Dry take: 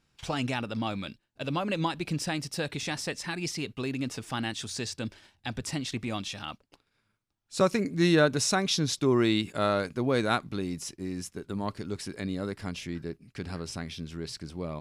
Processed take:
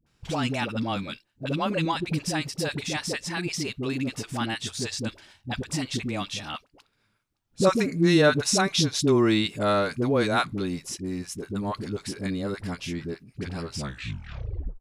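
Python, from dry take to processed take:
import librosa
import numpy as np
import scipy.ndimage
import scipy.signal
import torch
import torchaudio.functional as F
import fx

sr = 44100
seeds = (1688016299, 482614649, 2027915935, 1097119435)

y = fx.tape_stop_end(x, sr, length_s=1.14)
y = fx.dispersion(y, sr, late='highs', ms=64.0, hz=540.0)
y = y * 10.0 ** (3.5 / 20.0)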